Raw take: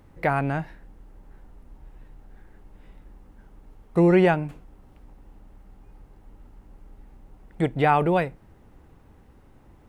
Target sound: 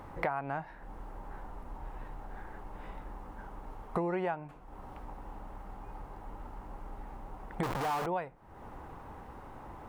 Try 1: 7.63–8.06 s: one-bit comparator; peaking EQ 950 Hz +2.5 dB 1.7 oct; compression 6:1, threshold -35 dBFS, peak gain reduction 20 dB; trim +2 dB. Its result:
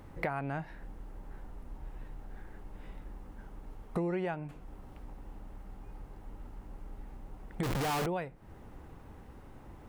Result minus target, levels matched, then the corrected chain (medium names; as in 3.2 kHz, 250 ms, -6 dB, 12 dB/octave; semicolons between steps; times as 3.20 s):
1 kHz band -4.5 dB
7.63–8.06 s: one-bit comparator; peaking EQ 950 Hz +14 dB 1.7 oct; compression 6:1, threshold -35 dBFS, peak gain reduction 25.5 dB; trim +2 dB